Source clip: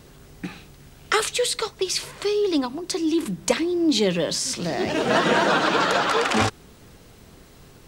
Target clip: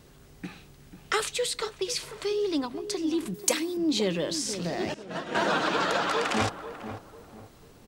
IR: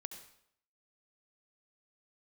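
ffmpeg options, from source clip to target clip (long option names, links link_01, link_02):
-filter_complex "[0:a]asettb=1/sr,asplit=3[link_01][link_02][link_03];[link_01]atrim=end=3.344[link_04];[link_02]atrim=start=3.34:end=3.77,asetpts=PTS-STARTPTS,afade=type=in:duration=0.004:curve=qsin,afade=type=out:start_time=0.426:duration=0.004:curve=qsin,aemphasis=mode=production:type=bsi[link_05];[link_03]atrim=start=3.766[link_06];[link_04][link_05]acrossfade=duration=0.004:curve1=hsin:curve2=qsin[link_07];[link_07][link_06]acrossfade=duration=0.004:curve1=qsin:curve2=hsin,asettb=1/sr,asplit=3[link_08][link_09][link_10];[link_08]atrim=end=4.944[link_11];[link_09]atrim=start=4.94:end=5.35,asetpts=PTS-STARTPTS,afade=type=in:duration=0.004:curve=qsin,afade=type=out:start_time=0.406:duration=0.004:curve=qsin,agate=range=-33dB:threshold=-10dB:ratio=3:detection=peak[link_12];[link_10]atrim=start=5.346[link_13];[link_11][link_12]acrossfade=duration=0.004:curve1=hsin:curve2=qsin[link_14];[link_14][link_13]acrossfade=duration=0.004:curve1=qsin:curve2=hsin,asplit=2[link_15][link_16];[link_16]adelay=493,lowpass=frequency=1000:poles=1,volume=-10dB,asplit=2[link_17][link_18];[link_18]adelay=493,lowpass=frequency=1000:poles=1,volume=0.37,asplit=2[link_19][link_20];[link_20]adelay=493,lowpass=frequency=1000:poles=1,volume=0.37,asplit=2[link_21][link_22];[link_22]adelay=493,lowpass=frequency=1000:poles=1,volume=0.37[link_23];[link_15][link_17][link_19][link_21][link_23]amix=inputs=5:normalize=0,volume=-6dB"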